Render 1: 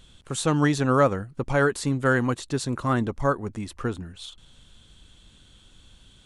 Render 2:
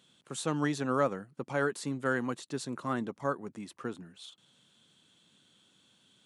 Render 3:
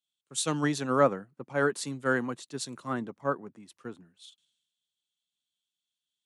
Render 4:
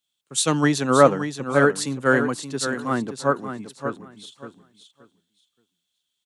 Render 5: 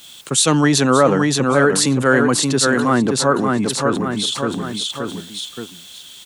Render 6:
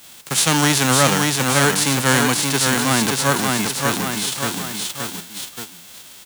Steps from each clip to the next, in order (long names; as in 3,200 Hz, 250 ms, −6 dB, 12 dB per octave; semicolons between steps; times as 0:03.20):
high-pass filter 150 Hz 24 dB per octave; level −8.5 dB
multiband upward and downward expander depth 100%
repeating echo 575 ms, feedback 20%, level −9 dB; level +8.5 dB
envelope flattener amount 70%; level −1 dB
spectral envelope flattened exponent 0.3; level −2 dB